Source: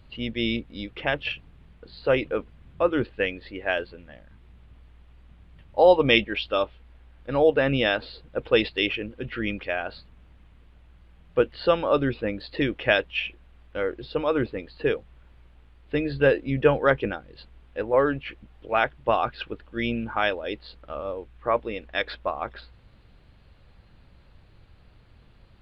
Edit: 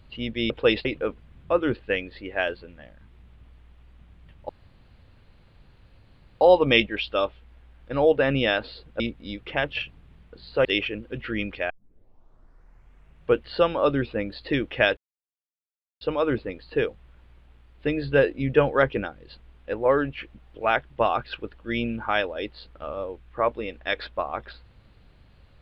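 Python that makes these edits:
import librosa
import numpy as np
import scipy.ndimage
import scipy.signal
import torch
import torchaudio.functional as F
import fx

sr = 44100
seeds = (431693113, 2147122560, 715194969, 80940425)

y = fx.edit(x, sr, fx.swap(start_s=0.5, length_s=1.65, other_s=8.38, other_length_s=0.35),
    fx.insert_room_tone(at_s=5.79, length_s=1.92),
    fx.tape_start(start_s=9.78, length_s=1.65),
    fx.silence(start_s=13.05, length_s=1.04), tone=tone)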